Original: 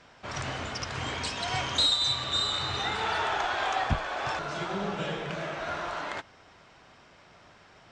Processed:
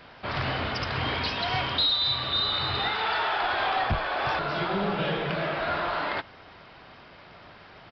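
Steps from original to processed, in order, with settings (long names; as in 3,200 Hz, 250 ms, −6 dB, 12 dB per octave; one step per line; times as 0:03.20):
0:02.88–0:03.42: low-shelf EQ 320 Hz −10.5 dB
in parallel at −3 dB: speech leveller within 4 dB
on the sum: soft clipping −18.5 dBFS, distortion −16 dB
downsampling to 11,025 Hz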